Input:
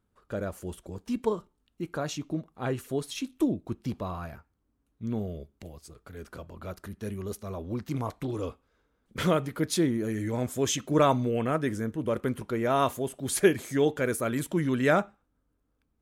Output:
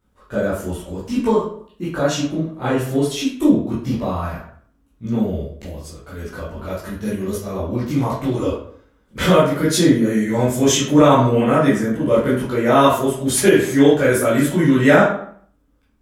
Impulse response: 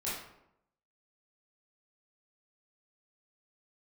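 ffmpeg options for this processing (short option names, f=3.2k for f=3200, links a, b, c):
-filter_complex "[1:a]atrim=start_sample=2205,asetrate=61740,aresample=44100[a];[0:a][a]afir=irnorm=-1:irlink=0,alimiter=level_in=12.5dB:limit=-1dB:release=50:level=0:latency=1,volume=-1dB"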